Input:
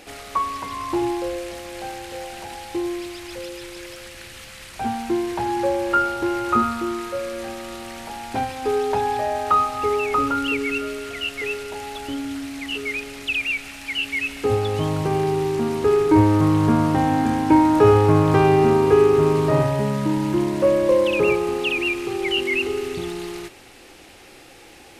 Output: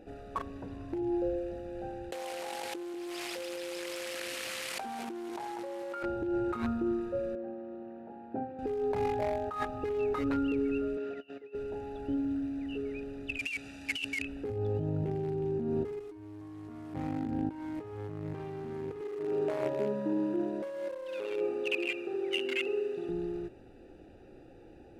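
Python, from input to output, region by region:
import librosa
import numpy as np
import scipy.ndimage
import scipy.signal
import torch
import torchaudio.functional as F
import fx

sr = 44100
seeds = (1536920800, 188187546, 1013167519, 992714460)

y = fx.chain(x, sr, fx.highpass(hz=330.0, slope=12),
    fx.echo_single(ms=193, db=-4.5),
    fx.env_flatten(amount_pct=100), at=(2.12, 6.03))
y = fx.chain(y, sr, fx.highpass(hz=240.0, slope=12),
    fx.spacing_loss(db_at_10k=44), at=(7.35, 8.59))
y = fx.chain(y, sr, fx.low_shelf(hz=340.0, db=-5.0),
    fx.over_compress(threshold_db=-33.0, ratio=-0.5),
    fx.bandpass_edges(low_hz=200.0, high_hz=5000.0), at=(10.97, 11.55))
y = fx.chain(y, sr, fx.highpass(hz=64.0, slope=12),
    fx.peak_eq(hz=6600.0, db=13.5, octaves=2.5), at=(13.39, 14.22))
y = fx.chain(y, sr, fx.comb(ms=2.8, depth=0.97),
    fx.env_flatten(amount_pct=50), at=(16.0, 16.94))
y = fx.chain(y, sr, fx.highpass(hz=430.0, slope=12),
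    fx.echo_feedback(ms=67, feedback_pct=53, wet_db=-4), at=(19.01, 23.09))
y = fx.wiener(y, sr, points=41)
y = fx.over_compress(y, sr, threshold_db=-27.0, ratio=-1.0)
y = y * 10.0 ** (-8.5 / 20.0)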